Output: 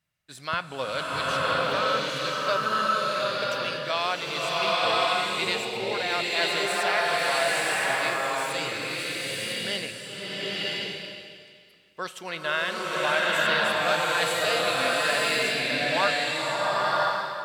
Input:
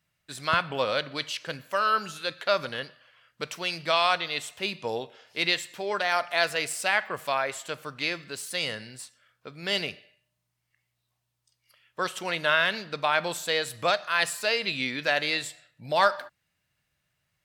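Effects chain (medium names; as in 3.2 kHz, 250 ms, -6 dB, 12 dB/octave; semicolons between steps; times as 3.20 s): swelling reverb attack 1010 ms, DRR -6.5 dB; trim -4.5 dB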